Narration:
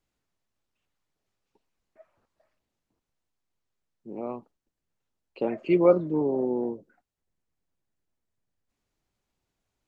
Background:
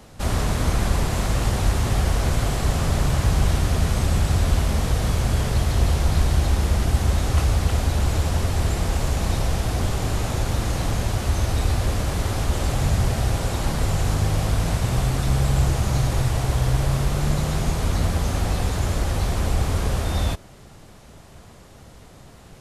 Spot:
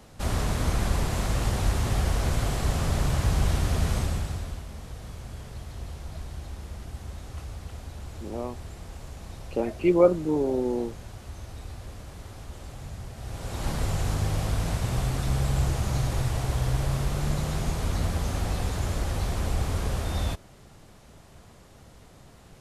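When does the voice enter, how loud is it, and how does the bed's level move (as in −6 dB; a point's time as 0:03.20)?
4.15 s, +0.5 dB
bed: 0:03.96 −4.5 dB
0:04.64 −18.5 dB
0:13.14 −18.5 dB
0:13.68 −5.5 dB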